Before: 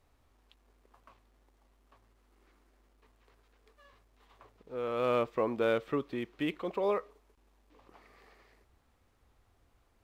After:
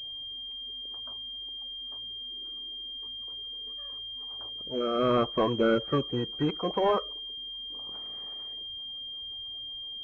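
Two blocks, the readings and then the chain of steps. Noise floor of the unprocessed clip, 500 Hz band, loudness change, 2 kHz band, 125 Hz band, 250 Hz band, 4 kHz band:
-70 dBFS, +3.5 dB, +1.0 dB, +2.0 dB, +10.0 dB, +7.0 dB, +22.0 dB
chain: coarse spectral quantiser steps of 30 dB; saturation -21 dBFS, distortion -20 dB; class-D stage that switches slowly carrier 3.2 kHz; trim +7 dB

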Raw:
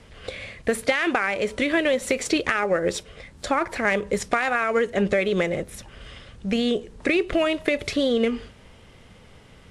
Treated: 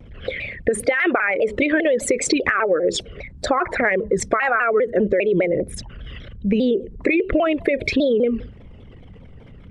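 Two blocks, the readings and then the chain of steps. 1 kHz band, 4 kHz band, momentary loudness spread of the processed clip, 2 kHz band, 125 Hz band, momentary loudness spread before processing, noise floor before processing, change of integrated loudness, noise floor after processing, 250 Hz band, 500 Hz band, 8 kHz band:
+3.0 dB, -1.0 dB, 11 LU, +3.0 dB, +3.5 dB, 14 LU, -50 dBFS, +3.5 dB, -43 dBFS, +3.5 dB, +4.5 dB, +5.0 dB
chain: resonances exaggerated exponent 2; compression, threshold -22 dBFS, peak gain reduction 7 dB; vibrato with a chosen wave saw down 5 Hz, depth 160 cents; trim +7.5 dB

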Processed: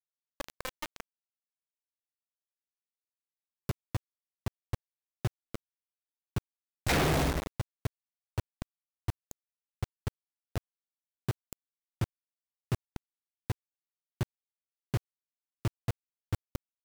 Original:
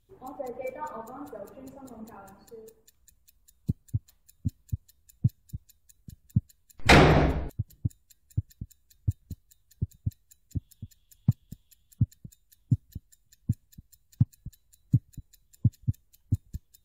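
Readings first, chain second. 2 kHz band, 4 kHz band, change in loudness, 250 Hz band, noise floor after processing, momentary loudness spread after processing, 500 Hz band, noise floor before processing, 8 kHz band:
-9.0 dB, -6.5 dB, -8.0 dB, -8.5 dB, under -85 dBFS, 18 LU, -8.0 dB, -68 dBFS, -1.0 dB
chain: valve stage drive 24 dB, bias 0.35; bit crusher 5-bit; trim -1.5 dB

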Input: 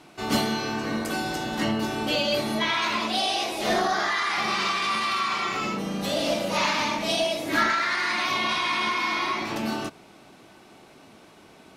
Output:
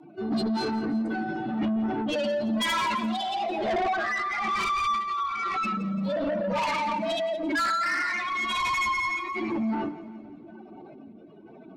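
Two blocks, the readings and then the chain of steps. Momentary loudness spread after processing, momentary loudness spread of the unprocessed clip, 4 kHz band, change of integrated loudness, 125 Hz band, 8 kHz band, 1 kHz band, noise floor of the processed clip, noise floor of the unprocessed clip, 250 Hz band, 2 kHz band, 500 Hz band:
8 LU, 5 LU, -7.5 dB, -2.0 dB, -2.5 dB, -8.0 dB, -1.0 dB, -48 dBFS, -52 dBFS, +1.0 dB, -3.0 dB, -1.5 dB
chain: spectral contrast enhancement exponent 2.8; hum notches 50/100/150/200/250/300 Hz; rotary cabinet horn 1 Hz; saturation -29.5 dBFS, distortion -10 dB; two-band feedback delay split 430 Hz, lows 458 ms, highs 171 ms, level -15.5 dB; trim +6 dB

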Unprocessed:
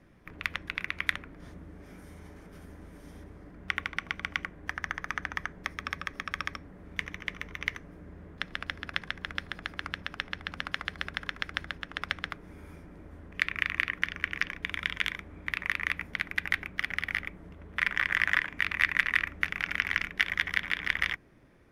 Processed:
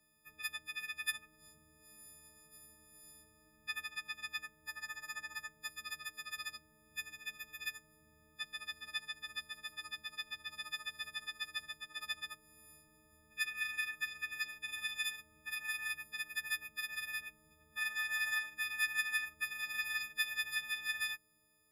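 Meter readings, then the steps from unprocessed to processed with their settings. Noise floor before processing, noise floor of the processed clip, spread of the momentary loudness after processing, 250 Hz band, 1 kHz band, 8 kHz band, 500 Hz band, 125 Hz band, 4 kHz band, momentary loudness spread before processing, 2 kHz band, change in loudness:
-51 dBFS, -69 dBFS, 17 LU, -21.5 dB, -12.0 dB, +5.0 dB, -17.0 dB, under -20 dB, -4.0 dB, 22 LU, -8.5 dB, -7.5 dB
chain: partials quantised in pitch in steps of 6 st; pre-emphasis filter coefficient 0.8; Chebyshev shaper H 3 -35 dB, 4 -41 dB, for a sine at -15 dBFS; trim -7 dB

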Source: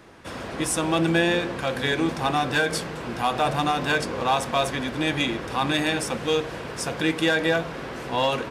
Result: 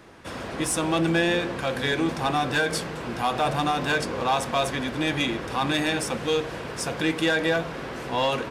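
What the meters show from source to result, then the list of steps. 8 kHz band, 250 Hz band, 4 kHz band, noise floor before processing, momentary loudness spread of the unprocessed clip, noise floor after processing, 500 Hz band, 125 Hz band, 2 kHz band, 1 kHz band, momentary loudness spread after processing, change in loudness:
-0.5 dB, -1.0 dB, -1.0 dB, -35 dBFS, 9 LU, -35 dBFS, -1.0 dB, -1.0 dB, -1.0 dB, -1.0 dB, 8 LU, -1.0 dB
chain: saturation -13.5 dBFS, distortion -21 dB

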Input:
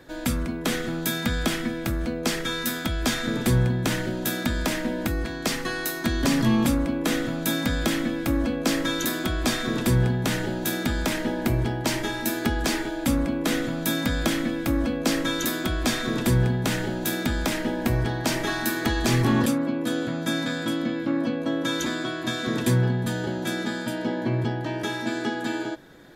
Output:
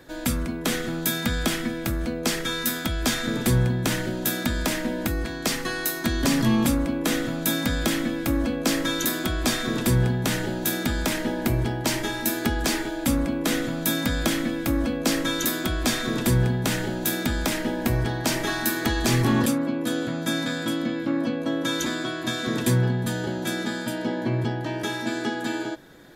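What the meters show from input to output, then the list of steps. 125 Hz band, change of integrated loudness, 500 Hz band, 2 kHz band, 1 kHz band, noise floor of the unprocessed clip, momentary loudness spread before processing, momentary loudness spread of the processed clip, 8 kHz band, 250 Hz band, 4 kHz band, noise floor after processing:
0.0 dB, +0.5 dB, 0.0 dB, +0.5 dB, 0.0 dB, -32 dBFS, 6 LU, 6 LU, +3.0 dB, 0.0 dB, +1.0 dB, -32 dBFS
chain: treble shelf 6.1 kHz +4.5 dB

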